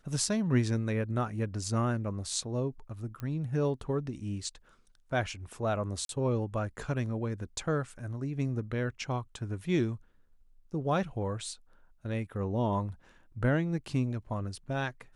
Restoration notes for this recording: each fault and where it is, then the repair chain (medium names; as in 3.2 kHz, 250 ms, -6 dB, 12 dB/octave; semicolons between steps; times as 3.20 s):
3.20 s: pop -25 dBFS
6.05–6.09 s: dropout 42 ms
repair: de-click; interpolate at 6.05 s, 42 ms